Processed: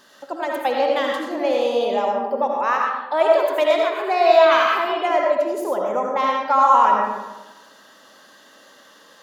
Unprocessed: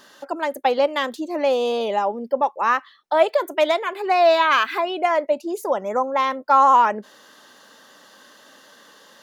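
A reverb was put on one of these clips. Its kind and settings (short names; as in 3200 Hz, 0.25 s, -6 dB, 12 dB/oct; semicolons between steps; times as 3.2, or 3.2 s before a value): digital reverb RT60 1.1 s, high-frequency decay 0.6×, pre-delay 40 ms, DRR -1 dB; gain -3 dB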